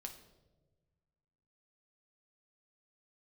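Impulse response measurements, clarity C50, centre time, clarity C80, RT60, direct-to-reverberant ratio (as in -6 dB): 9.5 dB, 16 ms, 12.5 dB, 1.3 s, 4.0 dB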